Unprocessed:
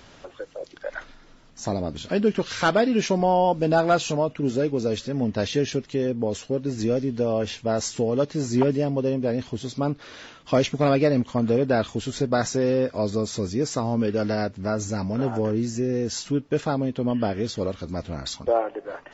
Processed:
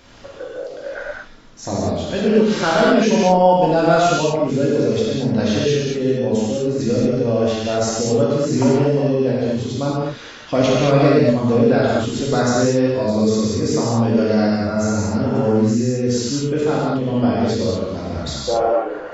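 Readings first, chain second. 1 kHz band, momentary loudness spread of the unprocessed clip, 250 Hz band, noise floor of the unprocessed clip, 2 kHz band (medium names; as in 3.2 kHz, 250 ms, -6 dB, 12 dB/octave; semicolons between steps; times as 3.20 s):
+6.5 dB, 11 LU, +7.5 dB, -50 dBFS, +6.0 dB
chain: gated-style reverb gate 260 ms flat, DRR -6.5 dB; trim -1 dB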